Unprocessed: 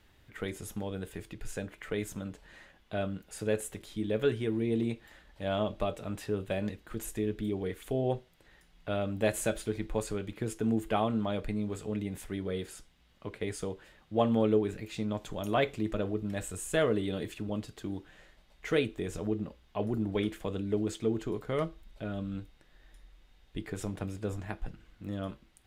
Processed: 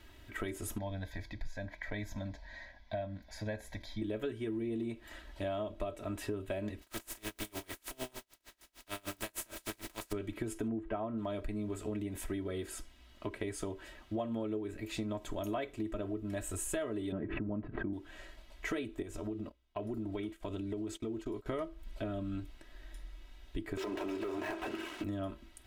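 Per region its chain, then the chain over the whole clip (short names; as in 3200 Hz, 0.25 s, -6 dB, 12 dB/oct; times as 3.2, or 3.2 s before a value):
0.78–4.02 air absorption 51 m + fixed phaser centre 1900 Hz, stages 8
6.81–10.11 spectral contrast lowered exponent 0.32 + compressor 12:1, threshold -35 dBFS + dB-linear tremolo 6.6 Hz, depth 32 dB
10.68–11.18 LPF 1700 Hz + mismatched tape noise reduction encoder only
17.12–17.93 LPF 1800 Hz 24 dB/oct + bell 160 Hz +14.5 dB 0.75 oct + backwards sustainer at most 83 dB/s
19.02–21.46 notch 1700 Hz, Q 18 + compressor 2:1, threshold -44 dBFS + gate -48 dBFS, range -21 dB
23.77–25.04 speaker cabinet 370–4600 Hz, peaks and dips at 380 Hz +9 dB, 1000 Hz +4 dB, 2700 Hz +5 dB + compressor 2.5:1, threshold -54 dBFS + sample leveller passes 5
whole clip: comb 3.1 ms, depth 76%; dynamic EQ 4400 Hz, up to -4 dB, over -54 dBFS, Q 0.82; compressor 6:1, threshold -39 dBFS; gain +4 dB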